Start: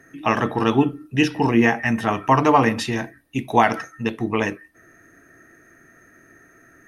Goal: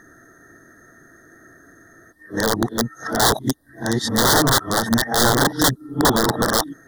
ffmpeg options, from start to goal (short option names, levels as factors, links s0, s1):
-af "areverse,aeval=exprs='(mod(4.22*val(0)+1,2)-1)/4.22':c=same,asuperstop=centerf=2500:order=8:qfactor=1.7,volume=1.5"